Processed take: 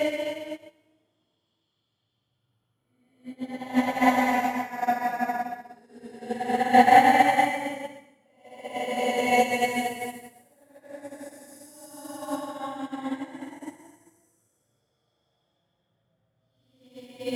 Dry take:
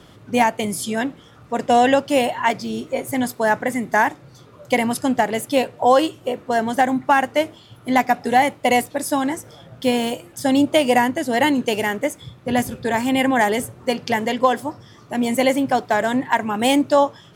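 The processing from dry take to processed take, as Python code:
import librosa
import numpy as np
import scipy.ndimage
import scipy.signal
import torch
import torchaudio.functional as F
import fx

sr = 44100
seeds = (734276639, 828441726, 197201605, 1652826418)

y = fx.paulstretch(x, sr, seeds[0], factor=7.0, window_s=0.25, from_s=7.38)
y = fx.room_flutter(y, sr, wall_m=8.9, rt60_s=0.21)
y = fx.upward_expand(y, sr, threshold_db=-31.0, expansion=2.5)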